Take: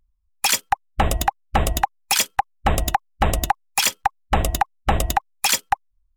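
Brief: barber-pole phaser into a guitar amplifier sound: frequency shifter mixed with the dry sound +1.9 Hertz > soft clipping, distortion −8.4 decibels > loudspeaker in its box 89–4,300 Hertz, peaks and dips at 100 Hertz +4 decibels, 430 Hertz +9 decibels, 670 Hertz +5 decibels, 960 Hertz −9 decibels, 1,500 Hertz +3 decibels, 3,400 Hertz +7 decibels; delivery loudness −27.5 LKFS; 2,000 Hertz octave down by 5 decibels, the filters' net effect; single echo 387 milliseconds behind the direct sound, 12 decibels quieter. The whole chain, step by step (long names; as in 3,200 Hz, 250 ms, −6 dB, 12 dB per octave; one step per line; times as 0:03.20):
parametric band 2,000 Hz −8.5 dB
single-tap delay 387 ms −12 dB
frequency shifter mixed with the dry sound +1.9 Hz
soft clipping −21.5 dBFS
loudspeaker in its box 89–4,300 Hz, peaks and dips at 100 Hz +4 dB, 430 Hz +9 dB, 670 Hz +5 dB, 960 Hz −9 dB, 1,500 Hz +3 dB, 3,400 Hz +7 dB
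level +3.5 dB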